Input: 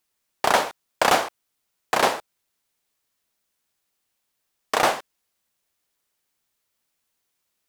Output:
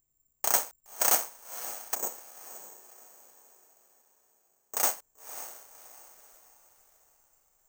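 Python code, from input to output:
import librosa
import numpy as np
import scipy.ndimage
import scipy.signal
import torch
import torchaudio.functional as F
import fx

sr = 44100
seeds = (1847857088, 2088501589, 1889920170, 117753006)

y = fx.low_shelf(x, sr, hz=230.0, db=-7.5)
y = fx.dmg_noise_colour(y, sr, seeds[0], colour='brown', level_db=-61.0)
y = fx.bandpass_q(y, sr, hz=330.0, q=0.79, at=(1.95, 4.77))
y = fx.echo_diffused(y, sr, ms=565, feedback_pct=43, wet_db=-7.5)
y = (np.kron(scipy.signal.resample_poly(y, 1, 6), np.eye(6)[0]) * 6)[:len(y)]
y = fx.upward_expand(y, sr, threshold_db=-24.0, expansion=1.5)
y = F.gain(torch.from_numpy(y), -12.0).numpy()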